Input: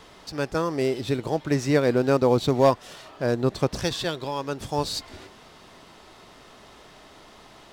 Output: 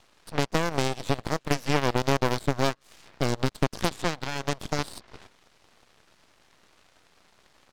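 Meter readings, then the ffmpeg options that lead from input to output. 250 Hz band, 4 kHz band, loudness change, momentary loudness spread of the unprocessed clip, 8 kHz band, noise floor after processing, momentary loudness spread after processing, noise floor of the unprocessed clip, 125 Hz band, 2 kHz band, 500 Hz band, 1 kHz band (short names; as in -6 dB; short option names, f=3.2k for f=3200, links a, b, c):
-4.5 dB, -0.5 dB, -3.5 dB, 11 LU, +1.0 dB, -63 dBFS, 7 LU, -50 dBFS, -1.5 dB, +2.0 dB, -6.5 dB, -1.0 dB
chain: -filter_complex "[0:a]acrossover=split=2300|5100[a][b][c];[a]acompressor=threshold=-31dB:ratio=4[d];[b]acompressor=threshold=-45dB:ratio=4[e];[c]acompressor=threshold=-55dB:ratio=4[f];[d][e][f]amix=inputs=3:normalize=0,asplit=2[g][h];[h]adelay=120,highpass=300,lowpass=3.4k,asoftclip=type=hard:threshold=-27.5dB,volume=-22dB[i];[g][i]amix=inputs=2:normalize=0,aeval=exprs='0.133*(cos(1*acos(clip(val(0)/0.133,-1,1)))-cos(1*PI/2))+0.0531*(cos(4*acos(clip(val(0)/0.133,-1,1)))-cos(4*PI/2))+0.0188*(cos(7*acos(clip(val(0)/0.133,-1,1)))-cos(7*PI/2))':c=same,volume=6dB"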